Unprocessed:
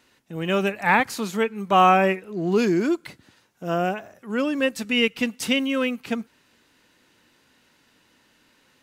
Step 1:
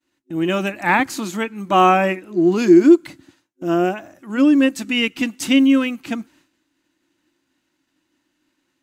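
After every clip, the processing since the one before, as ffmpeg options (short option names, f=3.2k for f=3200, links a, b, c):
-af "agate=range=-33dB:threshold=-51dB:ratio=3:detection=peak,superequalizer=6b=3.55:7b=0.501:15b=1.41,volume=2dB"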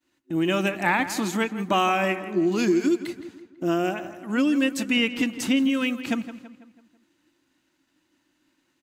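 -filter_complex "[0:a]acrossover=split=2100[a][b];[a]acompressor=threshold=-20dB:ratio=6[c];[b]alimiter=limit=-20dB:level=0:latency=1:release=289[d];[c][d]amix=inputs=2:normalize=0,asplit=2[e][f];[f]adelay=165,lowpass=f=3.3k:p=1,volume=-12.5dB,asplit=2[g][h];[h]adelay=165,lowpass=f=3.3k:p=1,volume=0.49,asplit=2[i][j];[j]adelay=165,lowpass=f=3.3k:p=1,volume=0.49,asplit=2[k][l];[l]adelay=165,lowpass=f=3.3k:p=1,volume=0.49,asplit=2[m][n];[n]adelay=165,lowpass=f=3.3k:p=1,volume=0.49[o];[e][g][i][k][m][o]amix=inputs=6:normalize=0"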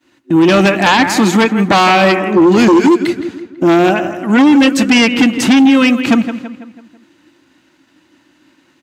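-af "aeval=exprs='0.422*sin(PI/2*3.55*val(0)/0.422)':c=same,highpass=68,highshelf=f=7k:g=-11,volume=3dB"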